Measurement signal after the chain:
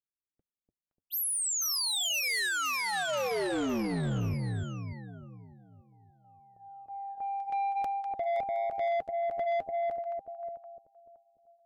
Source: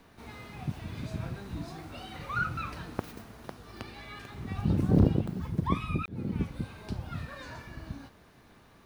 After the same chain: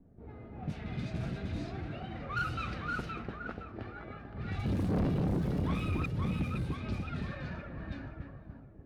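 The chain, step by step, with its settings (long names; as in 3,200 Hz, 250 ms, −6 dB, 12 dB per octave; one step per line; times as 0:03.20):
parametric band 1,000 Hz −9.5 dB 0.39 octaves
echo with a time of its own for lows and highs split 890 Hz, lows 294 ms, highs 518 ms, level −3.5 dB
flanger 0.47 Hz, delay 1 ms, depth 4.7 ms, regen −64%
soft clipping −31 dBFS
low-pass that shuts in the quiet parts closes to 330 Hz, open at −34.5 dBFS
level +4.5 dB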